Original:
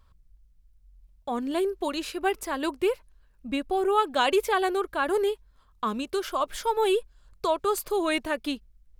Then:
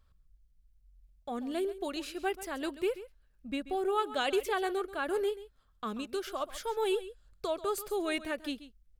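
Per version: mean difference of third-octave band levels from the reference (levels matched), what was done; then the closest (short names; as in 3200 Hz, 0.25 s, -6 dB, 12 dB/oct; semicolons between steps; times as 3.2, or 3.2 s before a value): 2.0 dB: bell 1000 Hz -11 dB 0.21 oct; on a send: echo 0.135 s -15 dB; on the sum: gain -6.5 dB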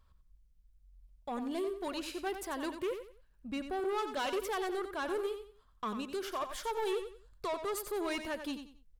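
5.5 dB: soft clip -24 dBFS, distortion -11 dB; on a send: feedback echo 91 ms, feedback 27%, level -9 dB; on the sum: gain -6.5 dB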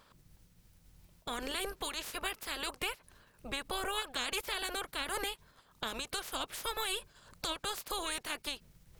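12.5 dB: spectral limiter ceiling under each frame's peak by 28 dB; compressor 2.5:1, threshold -30 dBFS, peak gain reduction 9 dB; gain -5.5 dB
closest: first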